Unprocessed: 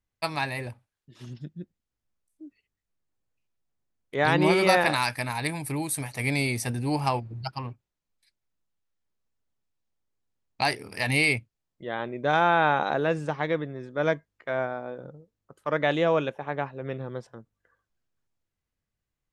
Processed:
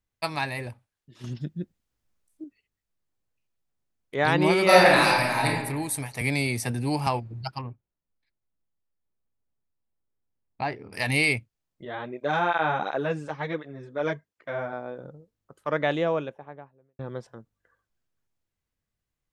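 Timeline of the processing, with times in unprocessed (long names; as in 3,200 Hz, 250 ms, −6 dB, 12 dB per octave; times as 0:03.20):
0:01.24–0:02.44: clip gain +6 dB
0:04.64–0:05.46: thrown reverb, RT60 1.1 s, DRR −5 dB
0:06.21–0:07.07: multiband upward and downward compressor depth 40%
0:07.61–0:10.93: head-to-tape spacing loss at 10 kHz 38 dB
0:11.85–0:14.73: through-zero flanger with one copy inverted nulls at 1.4 Hz, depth 6.4 ms
0:15.68–0:16.99: fade out and dull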